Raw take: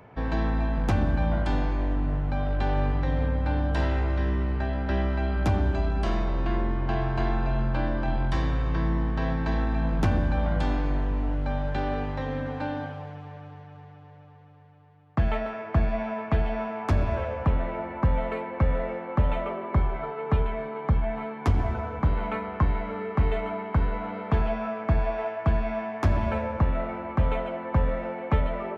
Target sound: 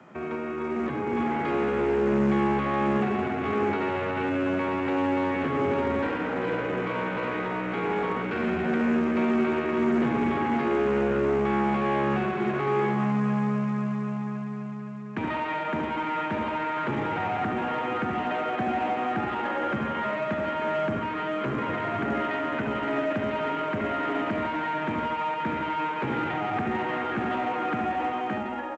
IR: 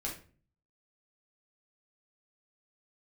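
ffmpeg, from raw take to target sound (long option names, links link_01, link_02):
-filter_complex "[0:a]lowshelf=frequency=140:gain=-7,acrossover=split=140|650[link_01][link_02][link_03];[link_01]acompressor=threshold=-40dB:ratio=4[link_04];[link_04][link_02][link_03]amix=inputs=3:normalize=0,alimiter=limit=-24dB:level=0:latency=1:release=393,dynaudnorm=framelen=490:gausssize=5:maxgain=14.5dB,asoftclip=type=tanh:threshold=-27dB,asetrate=62367,aresample=44100,atempo=0.707107,highpass=frequency=100:width=0.5412,highpass=frequency=100:width=1.3066,equalizer=frequency=230:width_type=q:width=4:gain=7,equalizer=frequency=370:width_type=q:width=4:gain=4,equalizer=frequency=980:width_type=q:width=4:gain=-3,lowpass=frequency=2600:width=0.5412,lowpass=frequency=2600:width=1.3066,asplit=2[link_05][link_06];[link_06]adelay=72,lowpass=frequency=1100:poles=1,volume=-4dB,asplit=2[link_07][link_08];[link_08]adelay=72,lowpass=frequency=1100:poles=1,volume=0.47,asplit=2[link_09][link_10];[link_10]adelay=72,lowpass=frequency=1100:poles=1,volume=0.47,asplit=2[link_11][link_12];[link_12]adelay=72,lowpass=frequency=1100:poles=1,volume=0.47,asplit=2[link_13][link_14];[link_14]adelay=72,lowpass=frequency=1100:poles=1,volume=0.47,asplit=2[link_15][link_16];[link_16]adelay=72,lowpass=frequency=1100:poles=1,volume=0.47[link_17];[link_07][link_09][link_11][link_13][link_15][link_17]amix=inputs=6:normalize=0[link_18];[link_05][link_18]amix=inputs=2:normalize=0" -ar 16000 -c:a pcm_alaw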